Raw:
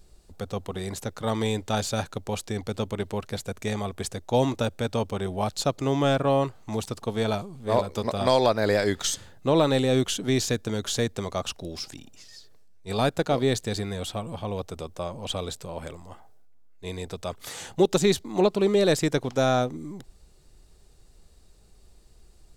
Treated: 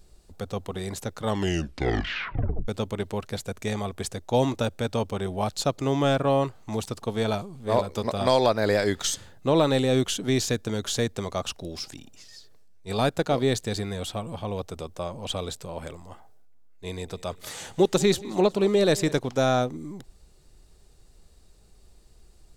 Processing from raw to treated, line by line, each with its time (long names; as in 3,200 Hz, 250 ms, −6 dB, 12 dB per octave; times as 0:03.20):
0:01.25: tape stop 1.43 s
0:16.90–0:19.19: repeating echo 183 ms, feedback 54%, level −20 dB